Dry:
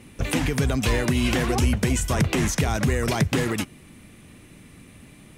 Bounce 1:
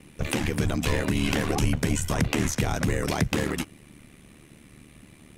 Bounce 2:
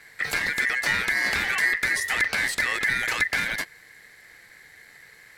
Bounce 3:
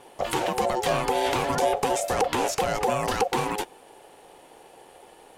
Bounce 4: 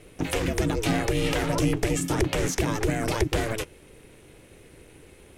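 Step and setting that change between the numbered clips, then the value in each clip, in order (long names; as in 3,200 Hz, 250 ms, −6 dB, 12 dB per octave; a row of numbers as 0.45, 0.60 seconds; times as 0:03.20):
ring modulation, frequency: 37, 1,900, 630, 220 Hertz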